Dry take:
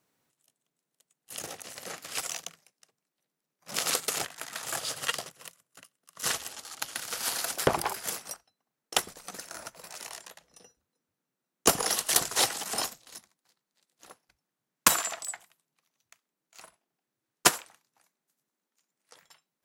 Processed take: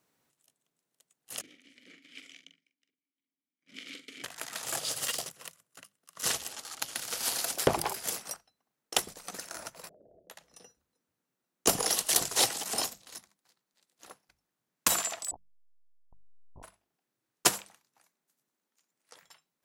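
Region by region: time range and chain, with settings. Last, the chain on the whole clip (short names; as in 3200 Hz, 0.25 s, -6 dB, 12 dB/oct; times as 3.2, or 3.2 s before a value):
1.41–4.24 vowel filter i + doubler 43 ms -9 dB
4.91–5.35 high shelf 4700 Hz +7 dB + overloaded stage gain 26.5 dB
9.89–10.3 steep low-pass 640 Hz 72 dB/oct + compressor 3:1, threshold -57 dBFS
15.31–16.63 level-crossing sampler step -40 dBFS + Chebyshev low-pass 980 Hz, order 6
whole clip: notches 50/100/150/200 Hz; dynamic EQ 1400 Hz, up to -5 dB, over -44 dBFS, Q 1; maximiser +8.5 dB; gain -8 dB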